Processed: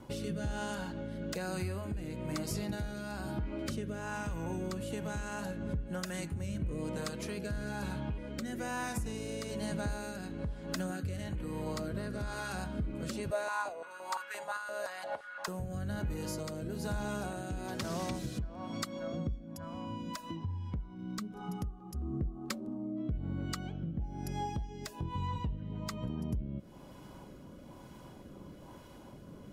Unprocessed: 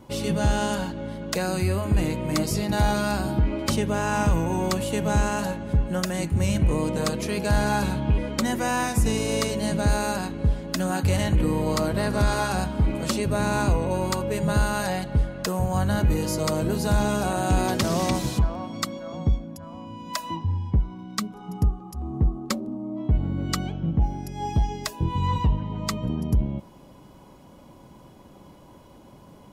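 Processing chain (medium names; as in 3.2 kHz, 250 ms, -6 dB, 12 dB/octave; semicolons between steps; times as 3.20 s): peaking EQ 1.5 kHz +4.5 dB 0.42 oct; compression 12:1, threshold -32 dBFS, peak gain reduction 15.5 dB; hard clipper -26 dBFS, distortion -27 dB; rotary cabinet horn 1.1 Hz; 13.31–15.48 s: step-sequenced high-pass 5.8 Hz 600–1500 Hz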